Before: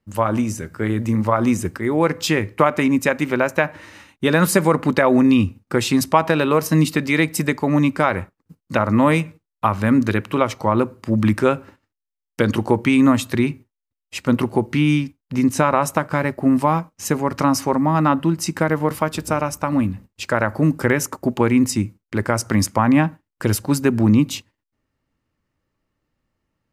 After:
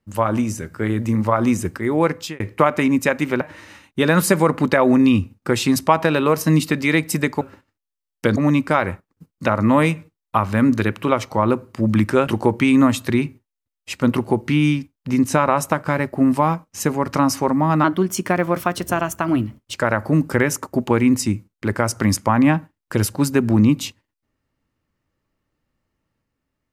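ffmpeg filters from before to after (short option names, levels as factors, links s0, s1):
-filter_complex "[0:a]asplit=8[s0][s1][s2][s3][s4][s5][s6][s7];[s0]atrim=end=2.4,asetpts=PTS-STARTPTS,afade=t=out:st=2.06:d=0.34[s8];[s1]atrim=start=2.4:end=3.412,asetpts=PTS-STARTPTS,afade=t=in:d=0.004:c=hsin[s9];[s2]atrim=start=3.658:end=7.662[s10];[s3]atrim=start=11.558:end=12.522[s11];[s4]atrim=start=7.658:end=11.562[s12];[s5]atrim=start=12.518:end=18.094[s13];[s6]atrim=start=18.09:end=20.24,asetpts=PTS-STARTPTS,asetrate=49833,aresample=44100,atrim=end_sample=83907,asetpts=PTS-STARTPTS[s14];[s7]atrim=start=20.236[s15];[s8][s9]concat=n=2:v=0:a=1[s16];[s16][s10]acrossfade=d=0.004:c1=hsin:c2=hsin[s17];[s17][s11]acrossfade=d=0.004:c1=hsin:c2=hsin[s18];[s18][s12]acrossfade=d=0.004:c1=hsin:c2=hsin[s19];[s19][s13]acrossfade=d=0.004:c1=hsin:c2=hsin[s20];[s20][s14]acrossfade=d=0.004:c1=hsin:c2=hsin[s21];[s21][s15]acrossfade=d=0.004:c1=hsin:c2=hsin"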